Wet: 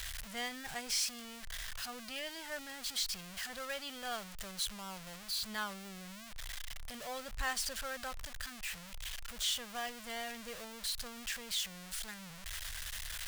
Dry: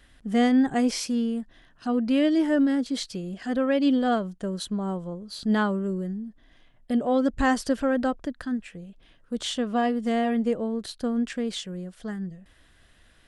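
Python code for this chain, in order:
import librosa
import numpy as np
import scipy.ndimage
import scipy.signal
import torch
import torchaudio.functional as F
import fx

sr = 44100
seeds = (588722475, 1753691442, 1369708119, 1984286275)

y = x + 0.5 * 10.0 ** (-27.5 / 20.0) * np.sign(x)
y = fx.tone_stack(y, sr, knobs='10-0-10')
y = F.gain(torch.from_numpy(y), -5.0).numpy()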